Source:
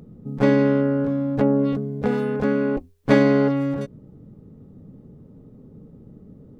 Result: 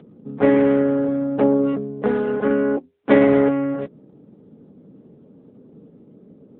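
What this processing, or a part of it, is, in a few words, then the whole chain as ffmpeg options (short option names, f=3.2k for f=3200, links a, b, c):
telephone: -filter_complex "[0:a]asettb=1/sr,asplit=3[a][b][c];[a]atrim=end=2.484[d];[b]atrim=start=2.48:end=3.09,asetpts=PTS-STARTPTS,afade=t=in:d=0.004:c=qsin,afade=t=out:st=0.606:d=0.004:c=qsin,aemphasis=mode=reproduction:type=cd[e];[c]atrim=start=3.086[f];[d][e]acrossfade=d=0.004:c1=hsin:c2=qsin[g];[g][f]acrossfade=d=0.004:c1=qsin:c2=hsin,highpass=250,lowpass=3.5k,volume=4dB" -ar 8000 -c:a libopencore_amrnb -b:a 10200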